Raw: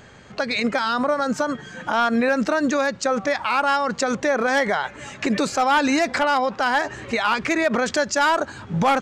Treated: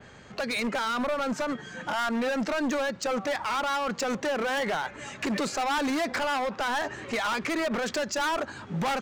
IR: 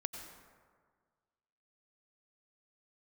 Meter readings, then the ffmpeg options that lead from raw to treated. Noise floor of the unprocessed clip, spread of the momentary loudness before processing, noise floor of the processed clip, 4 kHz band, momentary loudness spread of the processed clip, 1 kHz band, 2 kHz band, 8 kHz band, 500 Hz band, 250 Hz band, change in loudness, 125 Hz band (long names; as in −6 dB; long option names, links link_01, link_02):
−43 dBFS, 6 LU, −47 dBFS, −5.0 dB, 5 LU, −8.0 dB, −7.5 dB, −6.0 dB, −7.5 dB, −7.0 dB, −7.5 dB, −7.0 dB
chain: -filter_complex "[0:a]adynamicequalizer=threshold=0.00794:dfrequency=7500:dqfactor=0.8:tfrequency=7500:tqfactor=0.8:attack=5:release=100:ratio=0.375:range=2:mode=cutabove:tftype=bell,acrossover=split=150|5100[link_01][link_02][link_03];[link_01]acompressor=threshold=-50dB:ratio=6[link_04];[link_04][link_02][link_03]amix=inputs=3:normalize=0,asoftclip=type=hard:threshold=-22dB,volume=-3dB"